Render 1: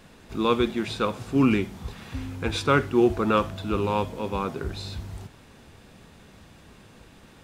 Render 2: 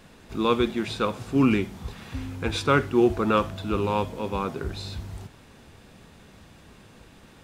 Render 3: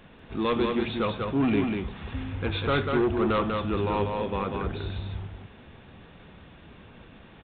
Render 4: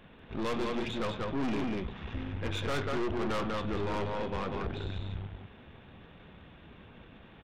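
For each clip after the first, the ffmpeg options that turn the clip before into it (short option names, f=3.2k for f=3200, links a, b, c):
-af anull
-af "aresample=8000,asoftclip=type=tanh:threshold=-19.5dB,aresample=44100,aecho=1:1:193:0.631"
-af "aeval=exprs='(tanh(31.6*val(0)+0.65)-tanh(0.65))/31.6':c=same"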